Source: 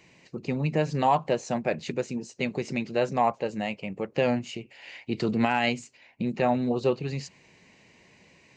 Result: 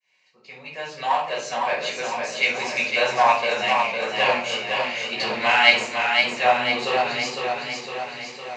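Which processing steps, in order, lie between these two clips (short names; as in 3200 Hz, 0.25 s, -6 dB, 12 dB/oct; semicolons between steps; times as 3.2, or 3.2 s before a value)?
opening faded in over 2.42 s; shoebox room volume 470 m³, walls furnished, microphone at 5.5 m; in parallel at -7 dB: one-sided clip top -27 dBFS; on the sum: tilt shelf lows -8 dB, about 830 Hz; reverse; upward compressor, threshold -41 dBFS; reverse; three-band isolator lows -15 dB, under 480 Hz, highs -15 dB, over 6700 Hz; warbling echo 0.507 s, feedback 60%, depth 57 cents, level -4.5 dB; gain -3.5 dB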